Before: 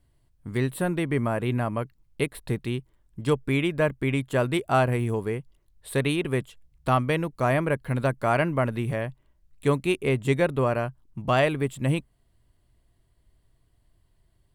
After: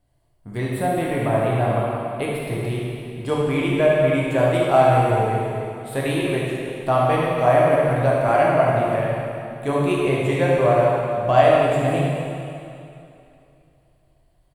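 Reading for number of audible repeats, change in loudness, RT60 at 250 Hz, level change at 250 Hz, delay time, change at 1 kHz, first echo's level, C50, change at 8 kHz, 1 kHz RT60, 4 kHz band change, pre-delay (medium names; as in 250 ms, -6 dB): 1, +6.5 dB, 2.7 s, +3.0 dB, 73 ms, +9.0 dB, -6.5 dB, -2.5 dB, +2.5 dB, 2.7 s, +3.0 dB, 5 ms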